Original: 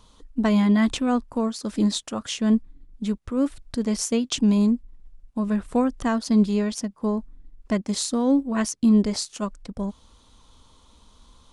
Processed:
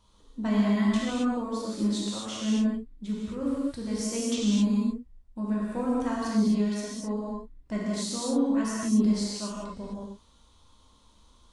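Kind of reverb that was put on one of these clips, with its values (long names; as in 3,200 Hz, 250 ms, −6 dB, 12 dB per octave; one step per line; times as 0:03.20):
reverb whose tail is shaped and stops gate 290 ms flat, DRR −6.5 dB
level −12 dB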